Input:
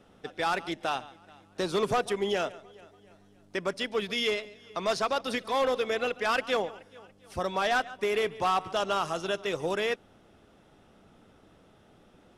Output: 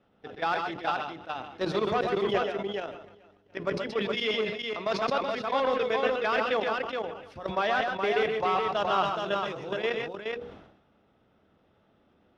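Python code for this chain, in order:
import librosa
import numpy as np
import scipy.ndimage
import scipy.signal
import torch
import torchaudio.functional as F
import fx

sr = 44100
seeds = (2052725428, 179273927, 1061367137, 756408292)

y = fx.highpass(x, sr, hz=48.0, slope=6)
y = fx.high_shelf(y, sr, hz=6300.0, db=11.5)
y = fx.hum_notches(y, sr, base_hz=60, count=8)
y = fx.level_steps(y, sr, step_db=14)
y = fx.air_absorb(y, sr, metres=270.0)
y = fx.echo_multitap(y, sr, ms=(124, 138, 421), db=(-6.0, -10.5, -4.5))
y = fx.sustainer(y, sr, db_per_s=67.0)
y = y * 10.0 ** (3.0 / 20.0)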